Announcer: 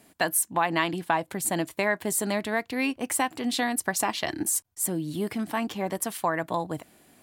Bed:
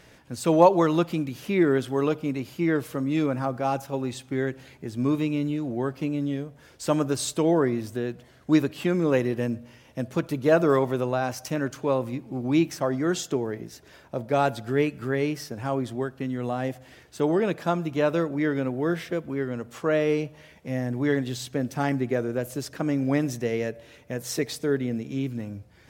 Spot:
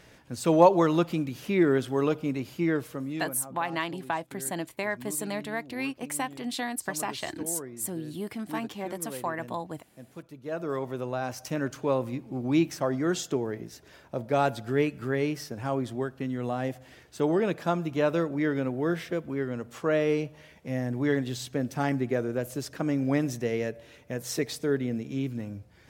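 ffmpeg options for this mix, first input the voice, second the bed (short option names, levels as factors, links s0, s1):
-filter_complex "[0:a]adelay=3000,volume=0.531[s0];[1:a]volume=5.01,afade=t=out:st=2.58:d=0.82:silence=0.158489,afade=t=in:st=10.42:d=1.27:silence=0.16788[s1];[s0][s1]amix=inputs=2:normalize=0"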